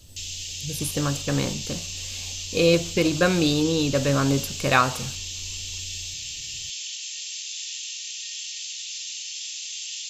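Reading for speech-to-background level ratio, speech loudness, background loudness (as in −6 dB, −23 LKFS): 8.5 dB, −23.0 LKFS, −31.5 LKFS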